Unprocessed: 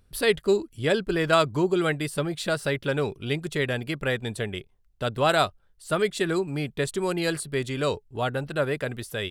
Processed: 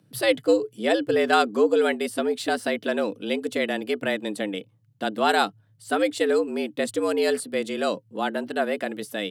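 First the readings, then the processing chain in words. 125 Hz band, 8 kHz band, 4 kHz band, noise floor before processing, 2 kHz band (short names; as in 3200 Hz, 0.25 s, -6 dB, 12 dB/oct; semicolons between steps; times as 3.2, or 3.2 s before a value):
-16.0 dB, 0.0 dB, +0.5 dB, -62 dBFS, +1.0 dB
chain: small resonant body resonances 200/330/2900 Hz, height 8 dB, ringing for 85 ms; frequency shift +100 Hz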